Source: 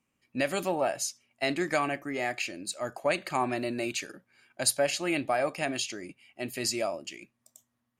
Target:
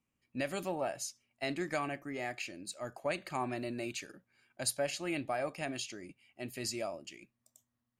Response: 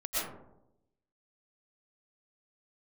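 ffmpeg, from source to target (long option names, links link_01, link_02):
-af "lowshelf=frequency=140:gain=8.5,volume=-8dB"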